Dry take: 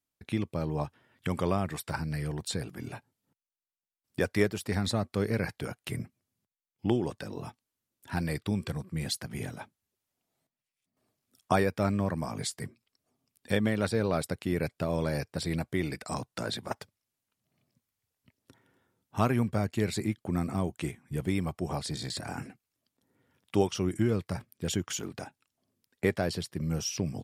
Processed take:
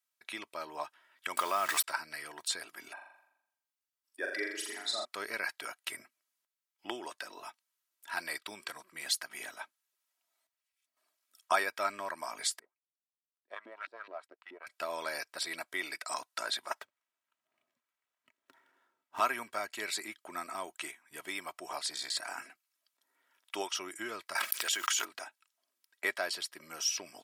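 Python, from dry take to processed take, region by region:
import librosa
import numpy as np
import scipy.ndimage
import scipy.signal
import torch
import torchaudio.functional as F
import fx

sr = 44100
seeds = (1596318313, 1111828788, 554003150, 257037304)

y = fx.chain(x, sr, fx.peak_eq(hz=1200.0, db=3.5, octaves=0.27),
    fx.quant_dither(seeds[0], bits=8, dither='none'),
    fx.env_flatten(amount_pct=70), at=(1.37, 1.84))
y = fx.chain(y, sr, fx.spec_expand(power=1.6),
    fx.cheby1_highpass(hz=270.0, order=3),
    fx.room_flutter(wall_m=7.2, rt60_s=0.76), at=(2.93, 5.05))
y = fx.chain(y, sr, fx.highpass(hz=52.0, slope=24),
    fx.power_curve(exponent=1.4),
    fx.filter_lfo_bandpass(shape='saw_up', hz=4.7, low_hz=250.0, high_hz=2700.0, q=2.9), at=(12.59, 14.67))
y = fx.chain(y, sr, fx.median_filter(points=9),
    fx.low_shelf(hz=420.0, db=9.5), at=(16.81, 19.2))
y = fx.chain(y, sr, fx.block_float(bits=7),
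    fx.highpass(hz=1000.0, slope=6),
    fx.env_flatten(amount_pct=100), at=(24.35, 25.05))
y = scipy.signal.sosfilt(scipy.signal.butter(2, 990.0, 'highpass', fs=sr, output='sos'), y)
y = fx.peak_eq(y, sr, hz=1300.0, db=2.5, octaves=0.77)
y = y + 0.43 * np.pad(y, (int(3.1 * sr / 1000.0), 0))[:len(y)]
y = F.gain(torch.from_numpy(y), 1.5).numpy()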